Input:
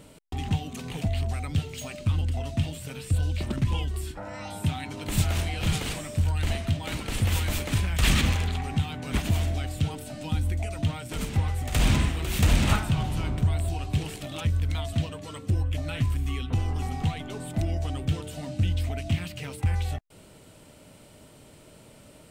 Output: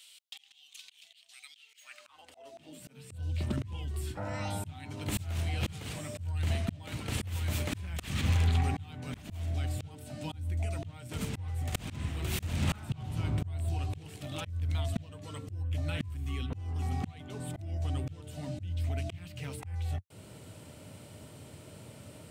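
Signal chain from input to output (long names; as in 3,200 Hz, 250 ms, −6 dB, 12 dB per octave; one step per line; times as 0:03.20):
high-pass filter sweep 3,300 Hz → 93 Hz, 0:01.54–0:03.24
volume swells 674 ms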